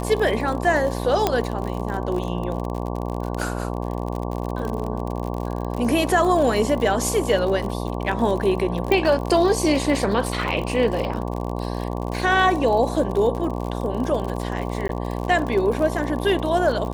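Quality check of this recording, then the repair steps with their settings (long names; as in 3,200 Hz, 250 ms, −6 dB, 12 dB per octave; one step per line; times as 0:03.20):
mains buzz 60 Hz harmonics 19 −27 dBFS
surface crackle 51 per second −27 dBFS
0:01.27: click −5 dBFS
0:08.92: click −9 dBFS
0:14.88–0:14.89: drop-out 12 ms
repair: click removal
hum removal 60 Hz, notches 19
repair the gap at 0:14.88, 12 ms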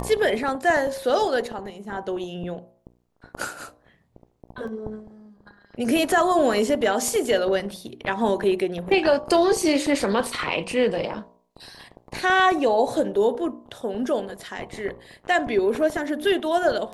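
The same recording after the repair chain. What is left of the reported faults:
0:01.27: click
0:08.92: click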